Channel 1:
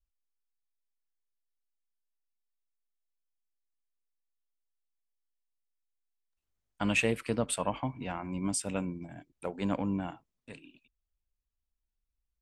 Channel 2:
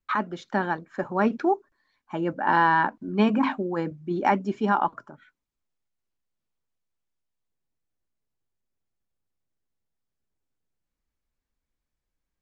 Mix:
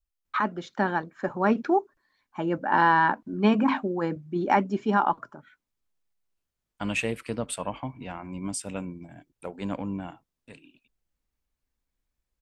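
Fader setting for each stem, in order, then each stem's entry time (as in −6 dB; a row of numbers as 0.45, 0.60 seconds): −0.5, 0.0 decibels; 0.00, 0.25 seconds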